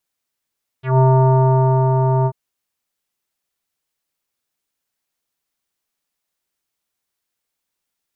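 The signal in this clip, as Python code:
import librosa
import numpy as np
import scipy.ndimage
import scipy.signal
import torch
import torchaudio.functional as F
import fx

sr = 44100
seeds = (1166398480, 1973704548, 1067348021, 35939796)

y = fx.sub_voice(sr, note=48, wave='square', cutoff_hz=940.0, q=2.7, env_oct=2.0, env_s=0.09, attack_ms=149.0, decay_s=0.95, sustain_db=-4, release_s=0.06, note_s=1.43, slope=24)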